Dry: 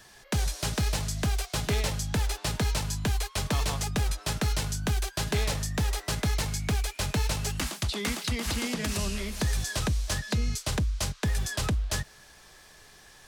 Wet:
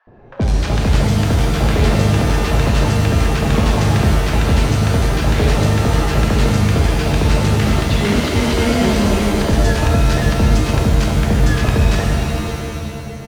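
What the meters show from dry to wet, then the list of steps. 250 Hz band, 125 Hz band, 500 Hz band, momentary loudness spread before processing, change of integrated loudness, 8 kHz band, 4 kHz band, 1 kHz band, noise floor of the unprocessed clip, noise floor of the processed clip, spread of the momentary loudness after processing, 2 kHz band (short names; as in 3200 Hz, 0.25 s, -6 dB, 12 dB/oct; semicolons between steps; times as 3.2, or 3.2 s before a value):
+17.5 dB, +15.5 dB, +17.5 dB, 2 LU, +14.0 dB, +4.5 dB, +8.5 dB, +15.0 dB, -54 dBFS, -28 dBFS, 3 LU, +12.0 dB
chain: tilt -4.5 dB/oct; overdrive pedal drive 30 dB, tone 5300 Hz, clips at -2 dBFS; bands offset in time highs, lows 70 ms, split 1100 Hz; low-pass opened by the level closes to 530 Hz, open at -7 dBFS; shimmer reverb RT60 2.3 s, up +7 st, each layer -2 dB, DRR 1 dB; gain -6.5 dB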